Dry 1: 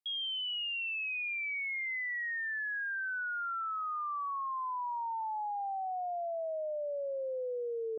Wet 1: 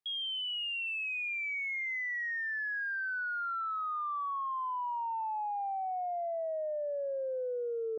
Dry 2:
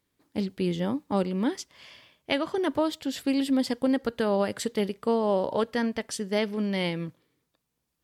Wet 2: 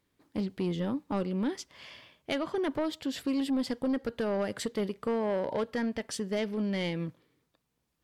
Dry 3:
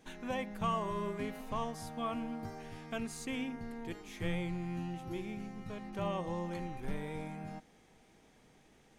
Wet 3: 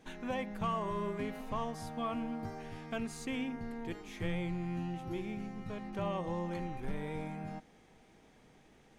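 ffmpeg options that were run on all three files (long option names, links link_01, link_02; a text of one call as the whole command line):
ffmpeg -i in.wav -filter_complex "[0:a]highshelf=frequency=5100:gain=-6,asplit=2[link_01][link_02];[link_02]acompressor=threshold=-34dB:ratio=6,volume=1dB[link_03];[link_01][link_03]amix=inputs=2:normalize=0,asoftclip=type=tanh:threshold=-18.5dB,volume=-4.5dB" out.wav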